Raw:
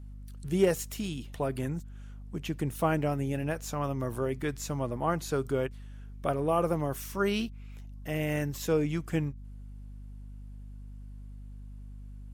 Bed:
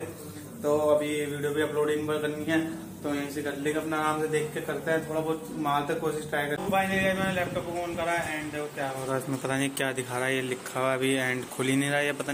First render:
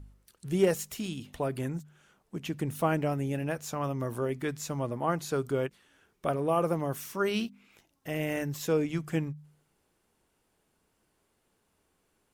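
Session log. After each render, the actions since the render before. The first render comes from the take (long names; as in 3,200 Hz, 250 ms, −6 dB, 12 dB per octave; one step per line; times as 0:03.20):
hum removal 50 Hz, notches 5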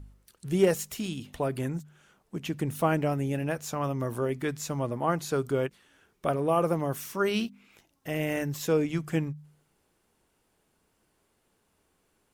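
level +2 dB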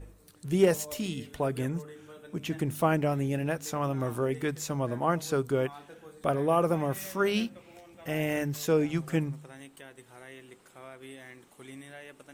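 mix in bed −20.5 dB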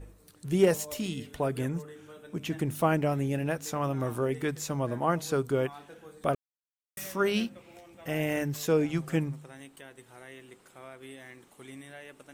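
0:06.35–0:06.97: silence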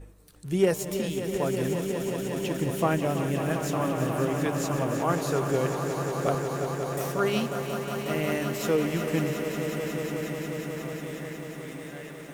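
echo that builds up and dies away 181 ms, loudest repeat 5, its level −10 dB
feedback echo at a low word length 326 ms, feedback 80%, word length 8 bits, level −12.5 dB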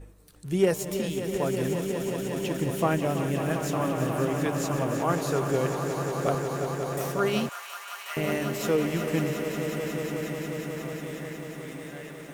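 0:07.49–0:08.17: high-pass filter 990 Hz 24 dB per octave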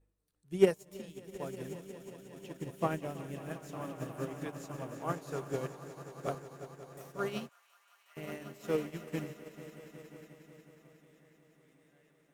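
expander for the loud parts 2.5 to 1, over −35 dBFS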